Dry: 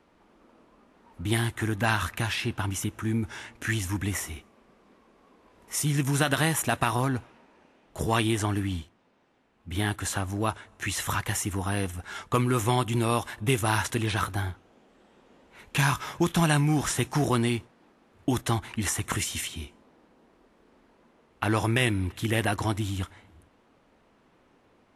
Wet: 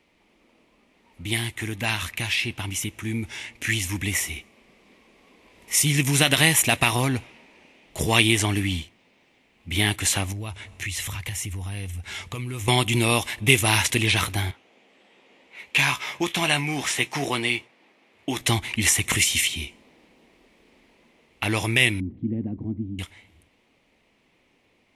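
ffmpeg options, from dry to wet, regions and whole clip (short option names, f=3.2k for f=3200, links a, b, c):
-filter_complex "[0:a]asettb=1/sr,asplit=3[a][b][c];[a]atrim=end=10.324[d];[b]atrim=start=10.32:end=12.68,asetpts=PTS-STARTPTS,afade=t=in:d=0.004:c=qsin,afade=t=out:st=2.356:d=0.004:c=qsin,equalizer=f=83:t=o:w=1.3:g=12.5,acompressor=threshold=-38dB:ratio=3:attack=3.2:release=140:knee=1:detection=peak[e];[c]atrim=start=12.676[f];[d][e]acrossfade=d=0.004:c1=hsin:c2=qsin[g];[g][f]acrossfade=d=0.004:c1=qsin:c2=hsin,asettb=1/sr,asplit=3[h][i][j];[h]atrim=end=14.514[k];[i]atrim=start=14.51:end=18.41,asetpts=PTS-STARTPTS,afade=t=in:d=0.004:c=qsin,afade=t=out:st=3.896:d=0.004:c=qsin,highpass=f=500:p=1,highshelf=f=4.4k:g=-10.5,asplit=2[l][m];[m]adelay=15,volume=-10.5dB[n];[l][n]amix=inputs=2:normalize=0,atrim=end_sample=171990[o];[j]atrim=start=18.406[p];[k][o]acrossfade=d=0.004:c1=hsin:c2=qsin[q];[q][p]acrossfade=d=0.004:c1=qsin:c2=hsin,asettb=1/sr,asplit=3[r][s][t];[r]atrim=end=22.004[u];[s]atrim=start=22:end=22.99,asetpts=PTS-STARTPTS,afade=t=in:d=0.004:c=qsin,afade=t=out:st=0.986:d=0.004:c=qsin,aeval=exprs='val(0)+0.5*0.0126*sgn(val(0))':c=same,lowpass=f=240:t=q:w=3,lowshelf=f=150:g=-7.5[v];[t]atrim=start=22.986[w];[u][v]acrossfade=d=0.004:c1=hsin:c2=qsin[x];[x][w]acrossfade=d=0.004:c1=qsin:c2=hsin,dynaudnorm=f=390:g=21:m=7dB,highshelf=f=1.8k:t=q:w=3:g=6,volume=-3dB"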